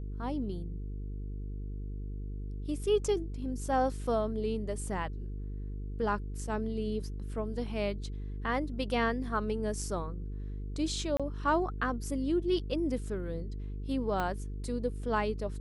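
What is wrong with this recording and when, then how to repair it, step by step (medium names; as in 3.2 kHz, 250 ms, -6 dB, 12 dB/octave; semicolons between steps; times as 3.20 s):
buzz 50 Hz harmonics 9 -38 dBFS
11.17–11.20 s: dropout 26 ms
14.20 s: pop -19 dBFS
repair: de-click; de-hum 50 Hz, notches 9; interpolate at 11.17 s, 26 ms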